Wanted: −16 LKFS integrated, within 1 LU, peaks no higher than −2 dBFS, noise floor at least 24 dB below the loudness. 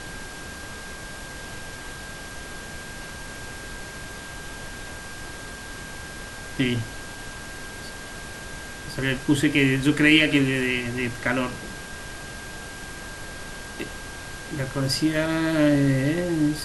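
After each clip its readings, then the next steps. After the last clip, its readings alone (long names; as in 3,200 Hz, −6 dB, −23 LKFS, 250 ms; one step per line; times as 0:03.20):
interfering tone 1,600 Hz; level of the tone −40 dBFS; background noise floor −38 dBFS; target noise floor −51 dBFS; integrated loudness −26.5 LKFS; sample peak −4.0 dBFS; target loudness −16.0 LKFS
→ notch filter 1,600 Hz, Q 30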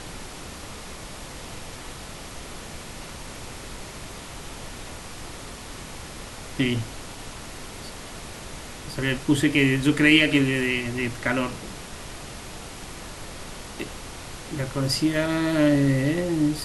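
interfering tone none found; background noise floor −39 dBFS; target noise floor −47 dBFS
→ noise reduction from a noise print 8 dB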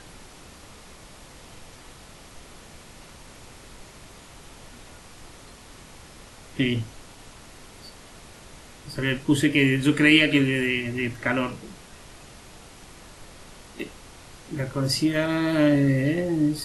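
background noise floor −47 dBFS; integrated loudness −22.5 LKFS; sample peak −4.5 dBFS; target loudness −16.0 LKFS
→ level +6.5 dB
brickwall limiter −2 dBFS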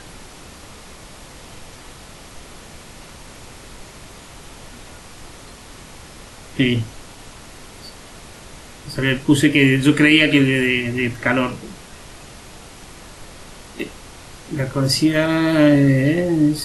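integrated loudness −16.5 LKFS; sample peak −2.0 dBFS; background noise floor −41 dBFS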